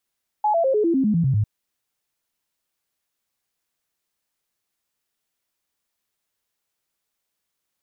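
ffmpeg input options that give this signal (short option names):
-f lavfi -i "aevalsrc='0.158*clip(min(mod(t,0.1),0.1-mod(t,0.1))/0.005,0,1)*sin(2*PI*846*pow(2,-floor(t/0.1)/3)*mod(t,0.1))':d=1:s=44100"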